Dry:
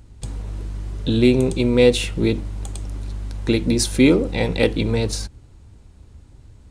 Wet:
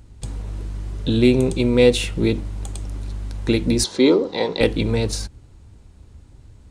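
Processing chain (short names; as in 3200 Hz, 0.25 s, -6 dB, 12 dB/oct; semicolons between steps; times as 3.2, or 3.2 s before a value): 3.84–4.61 speaker cabinet 280–6300 Hz, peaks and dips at 410 Hz +5 dB, 1000 Hz +7 dB, 1500 Hz -3 dB, 2500 Hz -9 dB, 4100 Hz +6 dB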